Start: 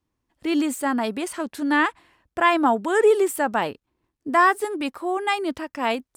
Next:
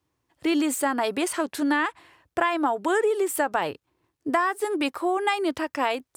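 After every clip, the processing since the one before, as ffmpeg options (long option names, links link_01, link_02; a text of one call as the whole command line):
ffmpeg -i in.wav -af "highpass=85,equalizer=frequency=220:width_type=o:width=0.31:gain=-14.5,acompressor=threshold=-24dB:ratio=12,volume=4.5dB" out.wav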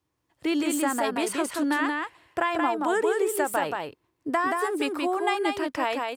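ffmpeg -i in.wav -af "aecho=1:1:178:0.668,volume=-2.5dB" out.wav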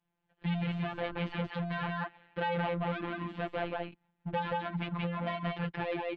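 ffmpeg -i in.wav -af "volume=28dB,asoftclip=hard,volume=-28dB,highpass=frequency=170:width_type=q:width=0.5412,highpass=frequency=170:width_type=q:width=1.307,lowpass=frequency=3600:width_type=q:width=0.5176,lowpass=frequency=3600:width_type=q:width=0.7071,lowpass=frequency=3600:width_type=q:width=1.932,afreqshift=-160,afftfilt=real='hypot(re,im)*cos(PI*b)':imag='0':win_size=1024:overlap=0.75" out.wav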